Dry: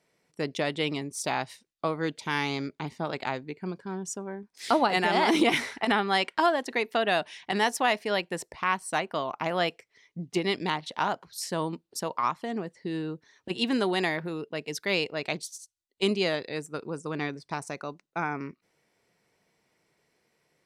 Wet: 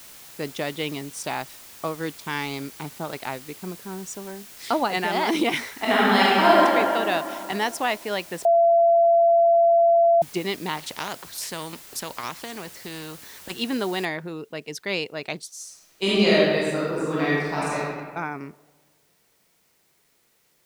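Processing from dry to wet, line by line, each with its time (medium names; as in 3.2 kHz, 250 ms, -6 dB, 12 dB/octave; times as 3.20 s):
1.19–3.70 s: transient shaper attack 0 dB, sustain -4 dB
5.73–6.64 s: reverb throw, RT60 2.6 s, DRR -8 dB
8.45–10.22 s: bleep 678 Hz -13.5 dBFS
10.77–13.53 s: spectrum-flattening compressor 2:1
14.05 s: noise floor step -45 dB -66 dB
15.52–17.81 s: reverb throw, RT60 1.6 s, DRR -8.5 dB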